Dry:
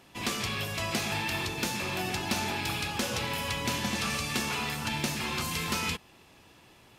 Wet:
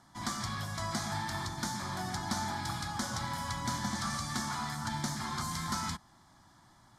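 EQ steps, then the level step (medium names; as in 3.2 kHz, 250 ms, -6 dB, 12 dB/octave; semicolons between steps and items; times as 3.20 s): low-pass 8.4 kHz 12 dB/octave; peaking EQ 71 Hz -7.5 dB 0.34 oct; static phaser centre 1.1 kHz, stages 4; 0.0 dB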